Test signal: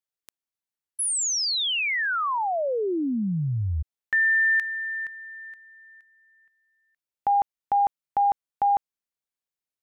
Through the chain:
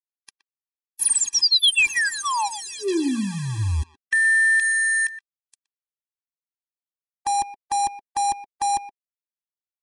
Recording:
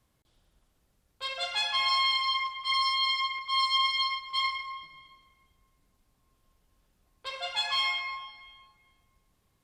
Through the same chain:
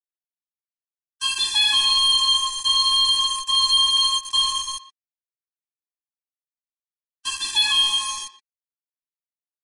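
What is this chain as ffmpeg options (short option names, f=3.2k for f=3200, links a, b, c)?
-filter_complex "[0:a]highshelf=f=5.1k:t=q:w=1.5:g=-8.5,bandreject=f=60:t=h:w=6,bandreject=f=120:t=h:w=6,bandreject=f=180:t=h:w=6,bandreject=f=240:t=h:w=6,bandreject=f=300:t=h:w=6,bandreject=f=360:t=h:w=6,bandreject=f=420:t=h:w=6,acrossover=split=690|2500[a][b][c];[b]acompressor=threshold=-35dB:ratio=12:attack=14:release=52:knee=1:detection=rms[d];[a][d][c]amix=inputs=3:normalize=0,bandreject=f=6.2k:w=8.5,aeval=exprs='val(0)*gte(abs(val(0)),0.015)':c=same,crystalizer=i=6.5:c=0,asoftclip=type=tanh:threshold=-20dB,aresample=22050,aresample=44100,equalizer=f=160:t=o:w=0.77:g=-8.5,asplit=2[e][f];[f]adelay=120,highpass=300,lowpass=3.4k,asoftclip=type=hard:threshold=-26.5dB,volume=-13dB[g];[e][g]amix=inputs=2:normalize=0,afftfilt=real='re*eq(mod(floor(b*sr/1024/390),2),0)':imag='im*eq(mod(floor(b*sr/1024/390),2),0)':win_size=1024:overlap=0.75,volume=6.5dB"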